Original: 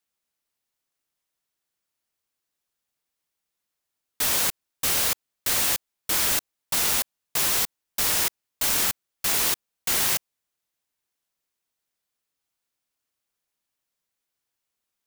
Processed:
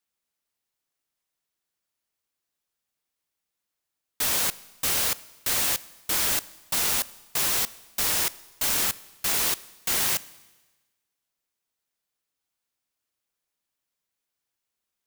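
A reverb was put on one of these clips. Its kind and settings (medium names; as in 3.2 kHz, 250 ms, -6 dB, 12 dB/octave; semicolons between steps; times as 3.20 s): Schroeder reverb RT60 1.2 s, combs from 28 ms, DRR 19 dB; trim -1.5 dB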